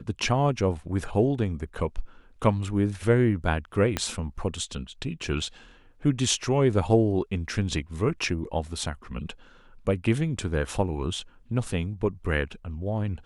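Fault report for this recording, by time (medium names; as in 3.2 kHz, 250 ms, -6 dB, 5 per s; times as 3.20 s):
3.97 s: pop -10 dBFS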